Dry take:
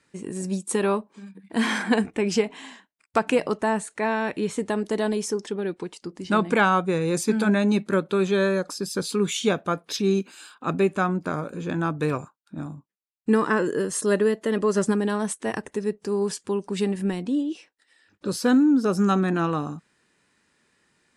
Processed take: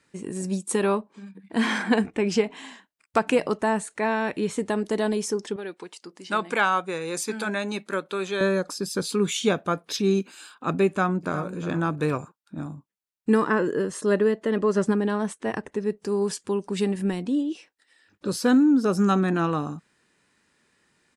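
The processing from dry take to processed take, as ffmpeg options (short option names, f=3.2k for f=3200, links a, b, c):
-filter_complex "[0:a]asettb=1/sr,asplit=3[a][b][c];[a]atrim=end=0.954[d];[b]atrim=start=0.95:end=2.57,asetpts=PTS-STARTPTS,afade=t=in:d=0.004:c=qsin,afade=t=out:st=1.616:d=0.004:c=qsin,highshelf=f=9.5k:g=-9.5[e];[c]atrim=start=2.566[f];[d][e]acrossfade=d=0.004:c1=hsin:c2=qsin[g];[g][f]acrossfade=d=0.004:c1=qsin:c2=hsin,asettb=1/sr,asplit=3[h][i][j];[h]atrim=end=5.564[k];[i]atrim=start=5.56:end=8.41,asetpts=PTS-STARTPTS,afade=t=in:d=0.004:c=qsin,afade=t=out:st=2.846:d=0.004:c=qsin,highpass=f=740:p=1[l];[j]atrim=start=8.406[m];[k][l]acrossfade=d=0.004:c1=hsin:c2=qsin[n];[n][m]acrossfade=d=0.004:c1=qsin:c2=hsin,asplit=2[o][p];[p]afade=t=in:st=10.87:d=0.01,afade=t=out:st=11.59:d=0.01,aecho=0:1:360|720:0.237137|0.0474275[q];[o][q]amix=inputs=2:normalize=0,asettb=1/sr,asplit=3[r][s][t];[r]atrim=end=13.444[u];[s]atrim=start=13.44:end=15.9,asetpts=PTS-STARTPTS,afade=t=in:d=0.004:c=qsin,afade=t=out:st=2.456:d=0.004:c=qsin,aemphasis=mode=reproduction:type=50kf[v];[t]atrim=start=15.896[w];[u][v]acrossfade=d=0.004:c1=hsin:c2=qsin[x];[x][w]acrossfade=d=0.004:c1=qsin:c2=hsin"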